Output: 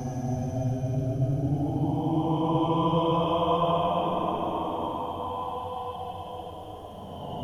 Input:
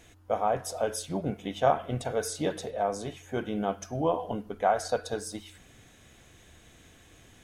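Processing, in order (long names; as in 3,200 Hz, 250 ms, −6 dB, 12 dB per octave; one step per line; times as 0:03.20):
extreme stretch with random phases 20×, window 0.10 s, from 0:03.92
parametric band 510 Hz −12 dB 1.5 octaves
level that may rise only so fast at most 190 dB per second
level +8 dB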